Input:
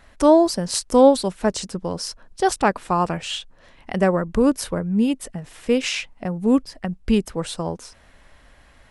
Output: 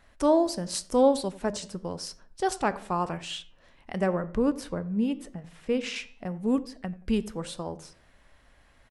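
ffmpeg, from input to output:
-filter_complex "[0:a]asettb=1/sr,asplit=3[a][b][c];[a]atrim=end=4.064[d];[b]atrim=start=4.06:end=5.96,asetpts=PTS-STARTPTS,afade=t=in:d=0.004:c=qsin,afade=t=out:st=1.896:d=0.004:c=qsin,aemphasis=mode=reproduction:type=cd[e];[c]atrim=start=5.956[f];[d][e]acrossfade=d=0.004:c1=hsin:c2=qsin[g];[g][f]acrossfade=d=0.004:c1=qsin:c2=hsin,flanger=delay=8.6:depth=4.6:regen=-85:speed=0.91:shape=triangular,asplit=2[h][i];[i]adelay=88,lowpass=f=850:p=1,volume=-16dB,asplit=2[j][k];[k]adelay=88,lowpass=f=850:p=1,volume=0.41,asplit=2[l][m];[m]adelay=88,lowpass=f=850:p=1,volume=0.41,asplit=2[n][o];[o]adelay=88,lowpass=f=850:p=1,volume=0.41[p];[j][l][n][p]amix=inputs=4:normalize=0[q];[h][q]amix=inputs=2:normalize=0,volume=-3.5dB"

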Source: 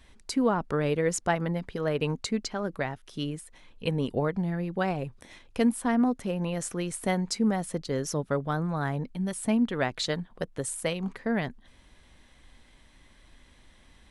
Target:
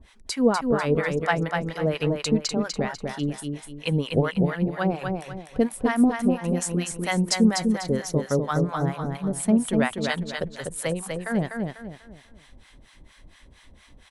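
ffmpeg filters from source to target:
-filter_complex "[0:a]acrossover=split=720[a][b];[a]aeval=exprs='val(0)*(1-1/2+1/2*cos(2*PI*4.3*n/s))':c=same[c];[b]aeval=exprs='val(0)*(1-1/2-1/2*cos(2*PI*4.3*n/s))':c=same[d];[c][d]amix=inputs=2:normalize=0,aecho=1:1:247|494|741|988:0.596|0.208|0.073|0.0255,volume=7.5dB"

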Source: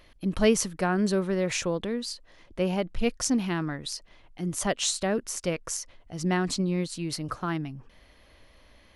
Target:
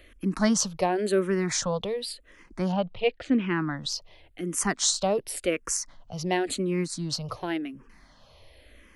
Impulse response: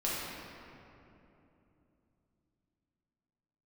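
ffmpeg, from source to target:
-filter_complex "[0:a]asettb=1/sr,asplit=3[a][b][c];[a]atrim=end=2.724[d];[b]atrim=start=2.72:end=3.77,asetpts=PTS-STARTPTS,afade=t=in:d=0.004:c=qsin,afade=t=out:st=1.046:d=0.004:c=qsin,lowpass=f=3.7k:w=0.5412,lowpass=f=3.7k:w=1.3066[e];[c]atrim=start=3.766[f];[d][e]acrossfade=d=0.004:c1=hsin:c2=qsin[g];[g][f]acrossfade=d=0.004:c1=qsin:c2=hsin,acrossover=split=180[h][i];[h]acompressor=threshold=-43dB:ratio=6[j];[j][i]amix=inputs=2:normalize=0,asplit=2[k][l];[l]afreqshift=-0.92[m];[k][m]amix=inputs=2:normalize=1,volume=5dB"

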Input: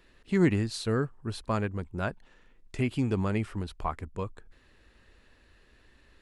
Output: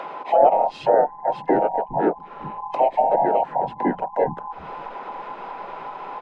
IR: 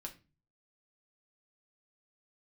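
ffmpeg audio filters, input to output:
-filter_complex "[0:a]afftfilt=real='real(if(between(b,1,1008),(2*floor((b-1)/48)+1)*48-b,b),0)':imag='imag(if(between(b,1,1008),(2*floor((b-1)/48)+1)*48-b,b),0)*if(between(b,1,1008),-1,1)':win_size=2048:overlap=0.75,lowshelf=f=130:t=q:w=3:g=-11,asplit=2[a][b];[b]alimiter=limit=-23dB:level=0:latency=1:release=41,volume=2dB[c];[a][c]amix=inputs=2:normalize=0,acompressor=mode=upward:threshold=-26dB:ratio=2.5,equalizer=f=410:t=o:w=1.4:g=5.5,acrossover=split=190[d][e];[d]adelay=410[f];[f][e]amix=inputs=2:normalize=0,asplit=3[g][h][i];[h]asetrate=35002,aresample=44100,atempo=1.25992,volume=-5dB[j];[i]asetrate=37084,aresample=44100,atempo=1.18921,volume=-4dB[k];[g][j][k]amix=inputs=3:normalize=0,lowpass=2.2k,bandreject=f=60:t=h:w=6,bandreject=f=120:t=h:w=6,bandreject=f=180:t=h:w=6,acrossover=split=590|810[l][m][n];[n]acompressor=threshold=-36dB:ratio=6[o];[l][m][o]amix=inputs=3:normalize=0,volume=2dB"

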